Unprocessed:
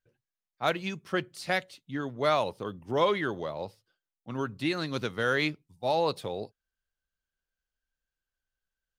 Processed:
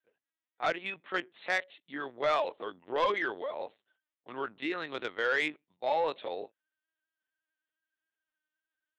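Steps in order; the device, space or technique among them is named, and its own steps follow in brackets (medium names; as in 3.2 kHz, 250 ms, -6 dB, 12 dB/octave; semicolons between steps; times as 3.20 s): talking toy (LPC vocoder at 8 kHz pitch kept; high-pass 410 Hz 12 dB/octave; peaking EQ 1.9 kHz +5 dB 0.31 oct; saturation -19.5 dBFS, distortion -16 dB)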